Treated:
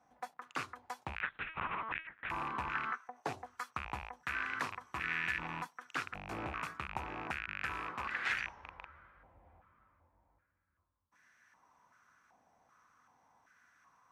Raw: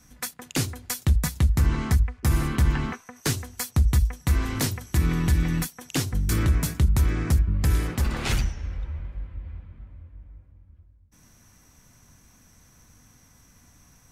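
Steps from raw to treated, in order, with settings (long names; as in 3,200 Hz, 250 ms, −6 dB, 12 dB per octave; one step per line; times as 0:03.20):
loose part that buzzes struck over −25 dBFS, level −18 dBFS
0:01.21–0:02.30: linear-prediction vocoder at 8 kHz pitch kept
band-pass on a step sequencer 2.6 Hz 770–1,700 Hz
level +3.5 dB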